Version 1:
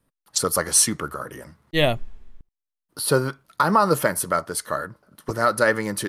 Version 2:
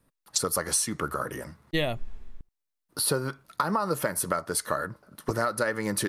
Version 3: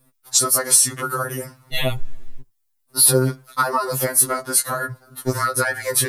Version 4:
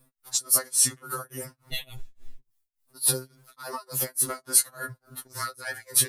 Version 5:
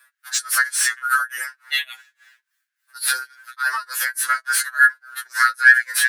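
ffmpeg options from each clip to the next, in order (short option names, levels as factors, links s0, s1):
-af "bandreject=f=3100:w=22,acompressor=threshold=0.0562:ratio=10,volume=1.26"
-af "highshelf=f=7500:g=11,afftfilt=real='re*2.45*eq(mod(b,6),0)':imag='im*2.45*eq(mod(b,6),0)':win_size=2048:overlap=0.75,volume=2.66"
-filter_complex "[0:a]acrossover=split=2700[s0][s1];[s0]acompressor=threshold=0.0355:ratio=6[s2];[s2][s1]amix=inputs=2:normalize=0,tremolo=f=3.5:d=0.97,volume=0.841"
-filter_complex "[0:a]asplit=2[s0][s1];[s1]highpass=f=720:p=1,volume=8.91,asoftclip=type=tanh:threshold=0.501[s2];[s0][s2]amix=inputs=2:normalize=0,lowpass=f=5100:p=1,volume=0.501,highpass=f=1600:t=q:w=9,volume=0.75"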